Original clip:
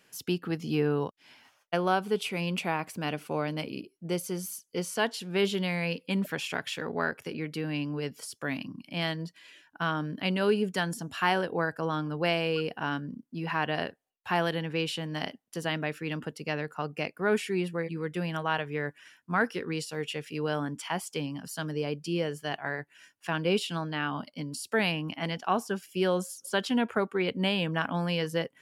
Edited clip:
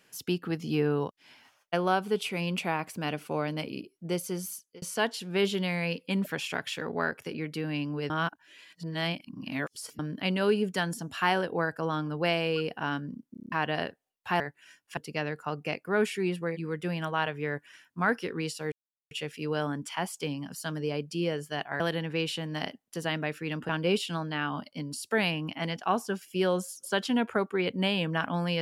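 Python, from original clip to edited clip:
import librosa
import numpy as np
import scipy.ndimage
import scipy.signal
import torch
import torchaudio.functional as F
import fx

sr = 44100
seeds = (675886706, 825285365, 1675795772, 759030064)

y = fx.edit(x, sr, fx.fade_out_span(start_s=4.53, length_s=0.29),
    fx.reverse_span(start_s=8.1, length_s=1.89),
    fx.stutter_over(start_s=13.31, slice_s=0.03, count=7),
    fx.swap(start_s=14.4, length_s=1.89, other_s=22.73, other_length_s=0.57),
    fx.insert_silence(at_s=20.04, length_s=0.39), tone=tone)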